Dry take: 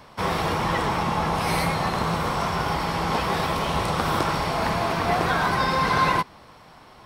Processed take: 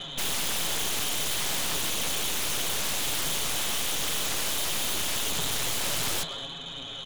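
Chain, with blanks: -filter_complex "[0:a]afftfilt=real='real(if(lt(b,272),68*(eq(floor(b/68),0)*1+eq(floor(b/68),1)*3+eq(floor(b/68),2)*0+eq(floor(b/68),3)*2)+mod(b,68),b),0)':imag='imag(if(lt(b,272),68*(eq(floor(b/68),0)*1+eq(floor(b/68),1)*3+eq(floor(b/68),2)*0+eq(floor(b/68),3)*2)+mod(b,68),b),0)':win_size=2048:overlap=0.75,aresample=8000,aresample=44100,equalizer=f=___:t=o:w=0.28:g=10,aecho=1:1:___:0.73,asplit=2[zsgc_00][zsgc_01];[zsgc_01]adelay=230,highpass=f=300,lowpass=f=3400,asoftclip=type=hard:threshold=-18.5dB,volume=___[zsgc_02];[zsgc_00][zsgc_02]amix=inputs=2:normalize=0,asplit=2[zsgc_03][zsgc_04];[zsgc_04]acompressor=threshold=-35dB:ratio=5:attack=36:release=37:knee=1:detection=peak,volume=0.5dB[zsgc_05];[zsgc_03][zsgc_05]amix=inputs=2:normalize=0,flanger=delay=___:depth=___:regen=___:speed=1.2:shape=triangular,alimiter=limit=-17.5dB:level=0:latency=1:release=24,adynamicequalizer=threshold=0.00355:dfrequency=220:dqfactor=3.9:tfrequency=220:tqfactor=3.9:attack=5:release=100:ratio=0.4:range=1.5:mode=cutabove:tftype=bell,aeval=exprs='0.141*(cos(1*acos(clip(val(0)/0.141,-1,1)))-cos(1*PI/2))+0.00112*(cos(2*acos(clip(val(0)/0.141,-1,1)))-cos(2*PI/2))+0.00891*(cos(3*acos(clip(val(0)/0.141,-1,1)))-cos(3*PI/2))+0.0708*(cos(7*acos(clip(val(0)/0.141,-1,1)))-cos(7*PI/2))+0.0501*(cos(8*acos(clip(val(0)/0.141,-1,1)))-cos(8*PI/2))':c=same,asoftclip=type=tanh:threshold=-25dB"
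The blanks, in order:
160, 7.3, -23dB, 4, 8.2, 37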